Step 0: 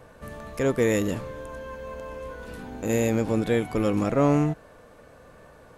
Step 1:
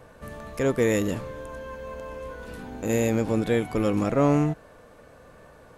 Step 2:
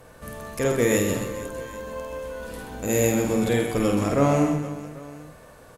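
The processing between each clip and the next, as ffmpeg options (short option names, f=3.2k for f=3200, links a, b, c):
-af anull
-af "aemphasis=mode=production:type=cd,aecho=1:1:50|130|258|462.8|790.5:0.631|0.398|0.251|0.158|0.1"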